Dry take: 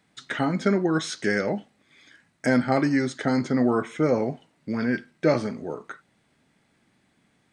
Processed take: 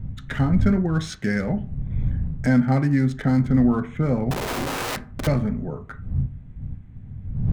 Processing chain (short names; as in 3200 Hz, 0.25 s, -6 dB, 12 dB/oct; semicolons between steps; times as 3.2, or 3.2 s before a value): Wiener smoothing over 9 samples; wind noise 110 Hz -36 dBFS; in parallel at -2 dB: compressor, threshold -31 dBFS, peak gain reduction 14.5 dB; on the sum: resonant low shelf 240 Hz +10 dB, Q 1.5; 4.31–5.27 wrapped overs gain 18.5 dB; on a send at -10 dB: air absorption 55 m + reverb RT60 0.45 s, pre-delay 4 ms; on the sum: gain -4.5 dB